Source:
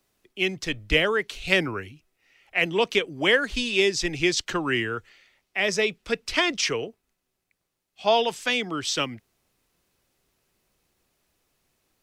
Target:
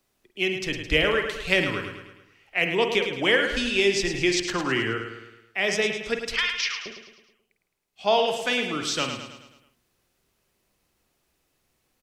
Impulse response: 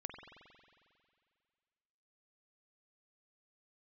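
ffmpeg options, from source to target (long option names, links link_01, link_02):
-filter_complex "[0:a]asettb=1/sr,asplit=3[link_01][link_02][link_03];[link_01]atrim=end=6.364[link_04];[link_02]atrim=start=6.36:end=6.86,asetpts=PTS-STARTPTS,afade=type=in:duration=0.004:curve=qsin,afade=type=out:start_time=0.496:duration=0.004:curve=qsin,asuperpass=centerf=2600:order=8:qfactor=0.58[link_05];[link_03]atrim=start=6.856[link_06];[link_04][link_05]acrossfade=duration=0.004:curve1=hsin:curve2=qsin[link_07];[link_07][link_06]acrossfade=duration=0.004:curve1=qsin:curve2=hsin,aecho=1:1:107|214|321|428|535|642:0.398|0.199|0.0995|0.0498|0.0249|0.0124[link_08];[1:a]atrim=start_sample=2205,atrim=end_sample=3087[link_09];[link_08][link_09]afir=irnorm=-1:irlink=0,volume=3.5dB"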